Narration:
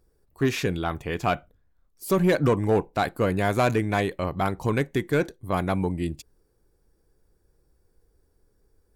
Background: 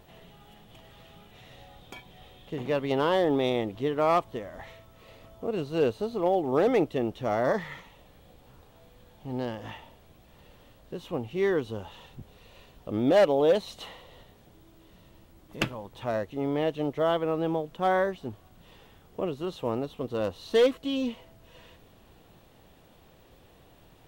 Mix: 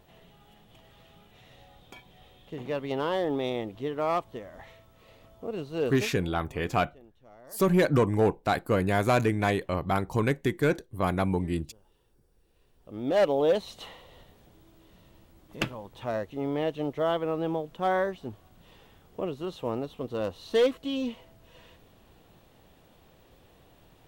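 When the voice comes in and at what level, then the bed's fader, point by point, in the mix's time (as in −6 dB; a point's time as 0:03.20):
5.50 s, −1.5 dB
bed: 0:06.03 −4 dB
0:06.26 −26 dB
0:12.39 −26 dB
0:13.24 −1.5 dB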